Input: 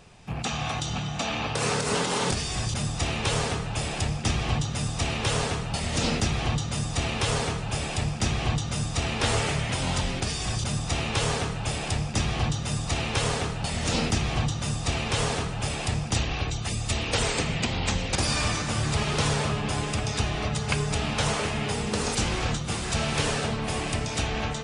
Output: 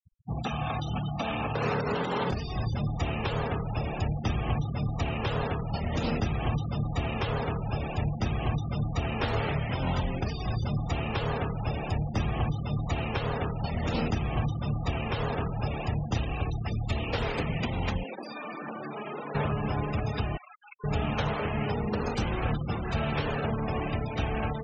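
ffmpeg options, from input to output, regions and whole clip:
ffmpeg -i in.wav -filter_complex "[0:a]asettb=1/sr,asplit=3[link_01][link_02][link_03];[link_01]atrim=end=18.034[link_04];[link_02]atrim=start=18.03:end=19.35,asetpts=PTS-STARTPTS,afade=type=in:duration=0.004:curve=qsin,afade=type=out:start_time=1.316:duration=0.004:curve=qsin,highpass=frequency=220:width=0.5412,highpass=frequency=220:width=1.3066,acompressor=threshold=-29dB:ratio=16:attack=3.2:release=140:knee=1:detection=peak,volume=26.5dB,asoftclip=hard,volume=-26.5dB[link_05];[link_03]atrim=start=19.346[link_06];[link_04][link_05]acrossfade=duration=0.004:curve1=hsin:curve2=qsin[link_07];[link_07][link_06]acrossfade=duration=0.004:curve1=qsin:curve2=hsin,asettb=1/sr,asplit=3[link_08][link_09][link_10];[link_08]atrim=end=20.374[link_11];[link_09]atrim=start=20.37:end=20.84,asetpts=PTS-STARTPTS,afade=type=in:duration=0.004:curve=qsin,afade=type=out:start_time=0.466:duration=0.004:curve=qsin,highpass=1200,acompressor=threshold=-35dB:ratio=8:attack=3.2:release=140:knee=1:detection=peak[link_12];[link_10]atrim=start=20.836[link_13];[link_11][link_12]acrossfade=duration=0.004:curve1=hsin:curve2=qsin[link_14];[link_14][link_13]acrossfade=duration=0.004:curve1=qsin:curve2=hsin,lowpass=frequency=2200:poles=1,afftfilt=real='re*gte(hypot(re,im),0.0251)':imag='im*gte(hypot(re,im),0.0251)':win_size=1024:overlap=0.75,alimiter=limit=-18dB:level=0:latency=1:release=298" out.wav

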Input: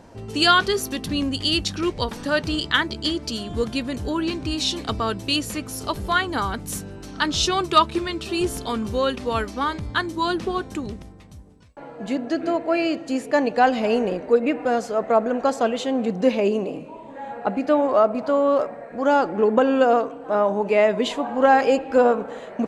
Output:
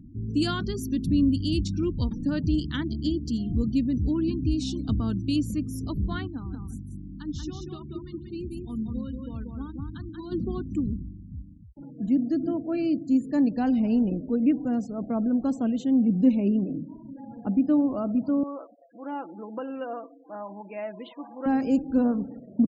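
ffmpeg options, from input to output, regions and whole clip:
ffmpeg -i in.wav -filter_complex "[0:a]asettb=1/sr,asplit=3[link_01][link_02][link_03];[link_01]atrim=end=6.274[link_04];[link_02]atrim=start=6.27:end=10.32,asetpts=PTS-STARTPTS,afade=type=in:duration=0.004:curve=qsin,afade=type=out:start_time=4.046:duration=0.004:curve=qsin,agate=range=-9dB:threshold=-25dB:ratio=16:release=100:detection=peak,acompressor=threshold=-27dB:ratio=16:attack=3.2:release=140:knee=1:detection=peak,aecho=1:1:185|370|555:0.668|0.147|0.0323,atrim=end_sample=178605[link_05];[link_03]atrim=start=10.316[link_06];[link_04][link_05]acrossfade=duration=0.004:curve1=hsin:curve2=qsin[link_07];[link_07][link_06]acrossfade=duration=0.004:curve1=qsin:curve2=hsin,asettb=1/sr,asplit=3[link_08][link_09][link_10];[link_08]atrim=end=18.434[link_11];[link_09]atrim=start=18.43:end=21.46,asetpts=PTS-STARTPTS,afade=type=in:duration=0.004:curve=qsin,afade=type=out:start_time=3.026:duration=0.004:curve=qsin,highpass=620,lowpass=2600,aecho=1:1:6:0.46,atrim=end_sample=133623[link_12];[link_10]atrim=start=21.456[link_13];[link_11][link_12]acrossfade=duration=0.004:curve1=hsin:curve2=qsin[link_14];[link_14][link_13]acrossfade=duration=0.004:curve1=qsin:curve2=hsin,firequalizer=gain_entry='entry(290,0);entry(420,-16);entry(6000,-6)':delay=0.05:min_phase=1,afftfilt=real='re*gte(hypot(re,im),0.00794)':imag='im*gte(hypot(re,im),0.00794)':win_size=1024:overlap=0.75,tiltshelf=frequency=670:gain=5" out.wav

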